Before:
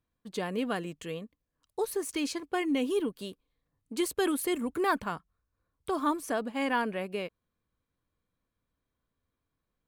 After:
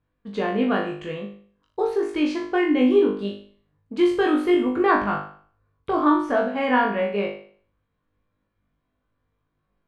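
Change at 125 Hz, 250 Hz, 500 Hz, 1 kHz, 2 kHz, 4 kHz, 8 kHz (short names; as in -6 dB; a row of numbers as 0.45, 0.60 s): +8.0 dB, +10.5 dB, +10.5 dB, +9.5 dB, +8.5 dB, +3.5 dB, under -10 dB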